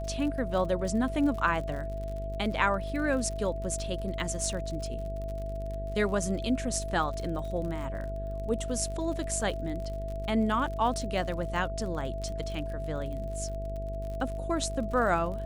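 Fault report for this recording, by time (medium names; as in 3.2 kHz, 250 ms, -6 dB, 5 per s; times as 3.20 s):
buzz 50 Hz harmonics 12 -36 dBFS
crackle 50 per s -37 dBFS
whine 660 Hz -37 dBFS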